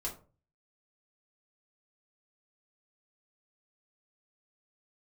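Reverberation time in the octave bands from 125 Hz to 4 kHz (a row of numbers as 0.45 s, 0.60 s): 0.60 s, 0.45 s, 0.40 s, 0.35 s, 0.25 s, 0.20 s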